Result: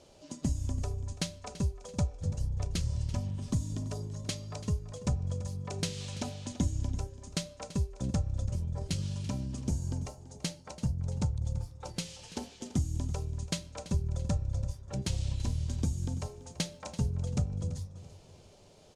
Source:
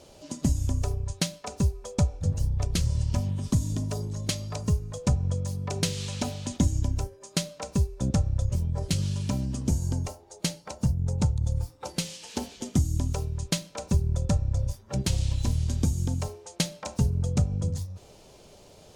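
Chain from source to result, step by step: LPF 10000 Hz 12 dB/oct; 16.39–17.1 crackle 290/s -58 dBFS; on a send: feedback echo 0.335 s, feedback 38%, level -16 dB; on the sum: gain -6.5 dB

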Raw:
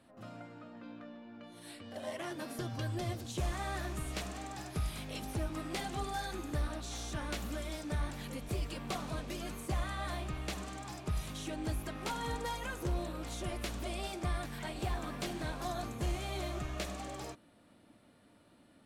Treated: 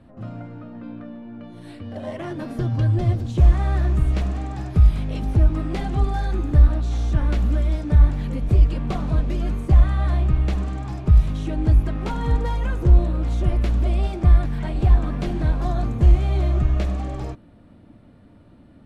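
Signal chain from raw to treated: RIAA curve playback; gain +7 dB

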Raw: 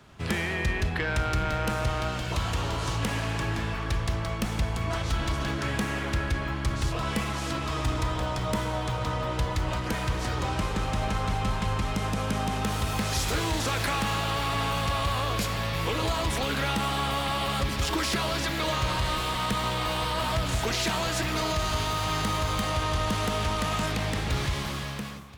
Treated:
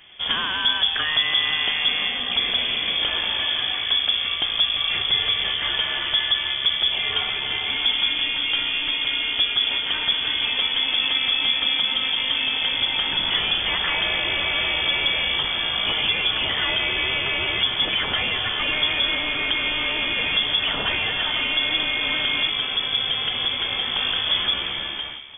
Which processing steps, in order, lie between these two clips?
22.49–23.96 notch comb 310 Hz; inverted band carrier 3400 Hz; gain +4.5 dB

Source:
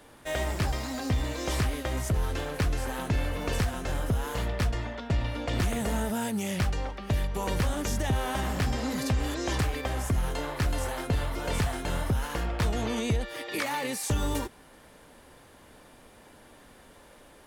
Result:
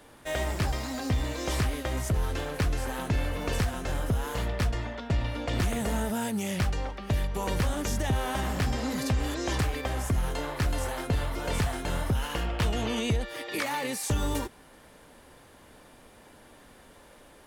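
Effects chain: 0.86–1.33 crackle 26/s -> 68/s -37 dBFS; 12.15–13.1 bell 2900 Hz +7.5 dB 0.27 oct

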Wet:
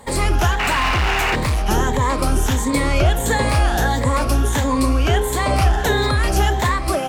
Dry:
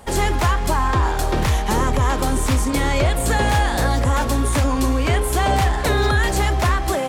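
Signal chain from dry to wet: moving spectral ripple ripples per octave 1, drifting +1.5 Hz, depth 9 dB; 0.59–1.36 painted sound noise 650–3000 Hz -19 dBFS; 0.51–1.66 overloaded stage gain 15 dB

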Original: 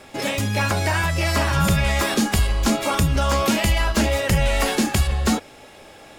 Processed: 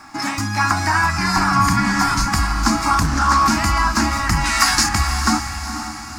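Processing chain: 1.18–2.28 frequency shift -270 Hz; 4.44–4.89 tilt shelf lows -9 dB; diffused feedback echo 0.472 s, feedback 45%, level -13 dB; bit-crush 10-bit; EQ curve 200 Hz 0 dB, 310 Hz +7 dB, 480 Hz -27 dB, 740 Hz +5 dB, 1200 Hz +13 dB, 2200 Hz +2 dB, 3300 Hz -9 dB, 4900 Hz +9 dB, 7700 Hz +3 dB, 12000 Hz -3 dB; on a send: diffused feedback echo 0.491 s, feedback 46%, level -11 dB; 3–3.48 on the sum: Doppler distortion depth 0.37 ms; gain -1.5 dB

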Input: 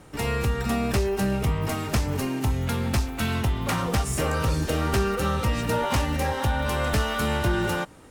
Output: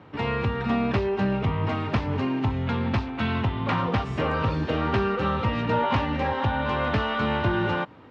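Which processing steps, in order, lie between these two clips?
speaker cabinet 100–3600 Hz, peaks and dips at 100 Hz +6 dB, 250 Hz +3 dB, 1000 Hz +5 dB

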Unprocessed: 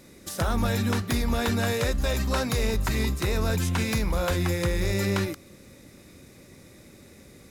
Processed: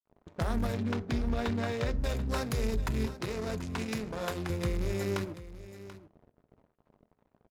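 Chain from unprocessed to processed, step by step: Wiener smoothing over 41 samples; 3.06–4.5 Bessel high-pass 180 Hz, order 2; low-pass opened by the level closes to 1500 Hz, open at -25 dBFS; 0.74–2 LPF 4600 Hz 12 dB/oct; in parallel at +0.5 dB: compressor, threshold -42 dBFS, peak gain reduction 18.5 dB; on the sum: crossover distortion -40.5 dBFS; echo 0.735 s -15 dB; reverb RT60 0.40 s, pre-delay 4 ms, DRR 13.5 dB; gain -5 dB

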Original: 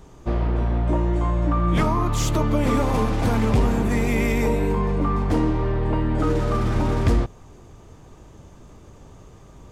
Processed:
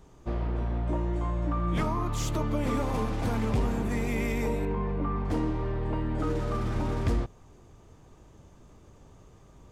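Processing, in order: 4.65–5.25 LPF 3000 Hz 12 dB/oct; gain -8 dB

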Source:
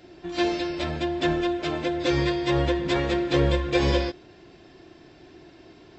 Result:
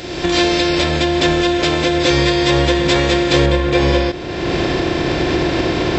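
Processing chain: per-bin compression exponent 0.6; recorder AGC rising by 30 dB/s; high shelf 3700 Hz +9.5 dB, from 3.46 s -3 dB; gain +6 dB

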